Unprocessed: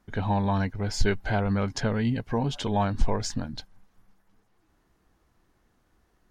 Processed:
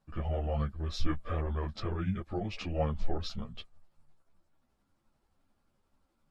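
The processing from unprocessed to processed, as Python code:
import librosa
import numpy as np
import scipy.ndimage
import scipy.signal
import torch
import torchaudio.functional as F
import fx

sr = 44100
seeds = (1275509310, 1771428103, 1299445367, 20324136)

y = fx.pitch_heads(x, sr, semitones=-4.5)
y = fx.ensemble(y, sr)
y = F.gain(torch.from_numpy(y), -3.5).numpy()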